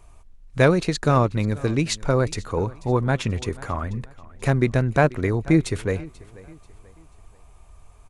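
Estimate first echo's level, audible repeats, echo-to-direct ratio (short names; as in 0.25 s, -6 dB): -21.0 dB, 2, -20.5 dB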